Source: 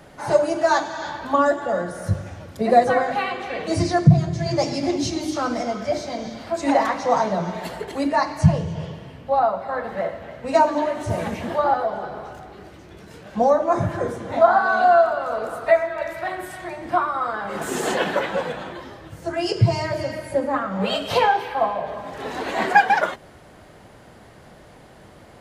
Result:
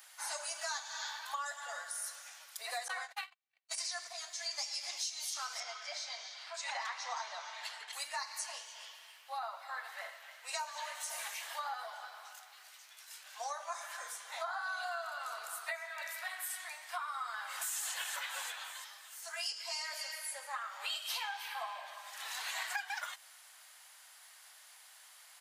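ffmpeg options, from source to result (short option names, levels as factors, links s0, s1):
-filter_complex "[0:a]asettb=1/sr,asplit=3[s0][s1][s2];[s0]atrim=end=2.884[s3];[s1]atrim=start=2.88:end=3.81,asetpts=PTS-STARTPTS,afade=t=in:d=0.004:c=qsin,afade=t=out:st=0.926:d=0.004:c=qsin,agate=range=0.00158:threshold=0.0708:ratio=16:release=100:detection=peak[s4];[s2]atrim=start=3.806[s5];[s3][s4]acrossfade=d=0.004:c1=hsin:c2=qsin[s6];[s6][s5]acrossfade=d=0.004:c1=qsin:c2=hsin,asettb=1/sr,asplit=3[s7][s8][s9];[s7]atrim=end=5.604[s10];[s8]atrim=start=5.6:end=7.93,asetpts=PTS-STARTPTS,afade=t=in:d=0.004:c=qsin,afade=t=out:st=2.326:d=0.004:c=qsin,highpass=100,lowpass=4800[s11];[s9]atrim=start=7.926[s12];[s10][s11]acrossfade=d=0.004:c1=hsin:c2=qsin[s13];[s13][s12]acrossfade=d=0.004:c1=qsin:c2=hsin,asplit=2[s14][s15];[s15]afade=t=in:st=17.42:d=0.01,afade=t=out:st=17.82:d=0.01,aecho=0:1:340|680|1020|1360|1700:0.398107|0.179148|0.0806167|0.0362775|0.0163249[s16];[s14][s16]amix=inputs=2:normalize=0,highpass=f=810:w=0.5412,highpass=f=810:w=1.3066,aderivative,acompressor=threshold=0.01:ratio=6,volume=1.58"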